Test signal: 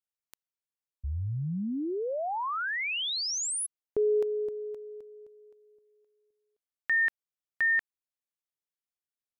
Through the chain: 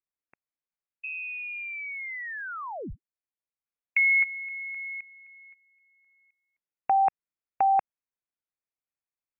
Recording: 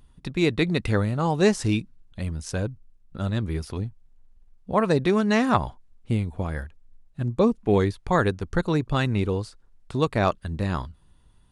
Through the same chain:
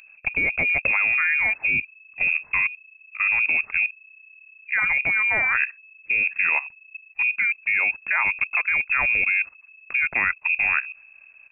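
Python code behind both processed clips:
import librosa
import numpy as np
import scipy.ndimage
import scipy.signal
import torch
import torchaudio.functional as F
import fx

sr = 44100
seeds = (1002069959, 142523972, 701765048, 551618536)

y = fx.level_steps(x, sr, step_db=15)
y = fx.freq_invert(y, sr, carrier_hz=2600)
y = y * librosa.db_to_amplitude(9.0)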